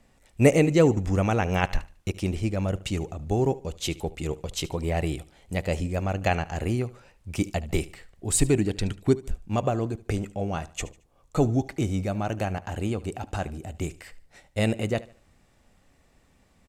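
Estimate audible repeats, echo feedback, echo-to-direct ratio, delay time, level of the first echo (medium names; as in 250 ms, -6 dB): 2, 33%, -18.5 dB, 74 ms, -19.0 dB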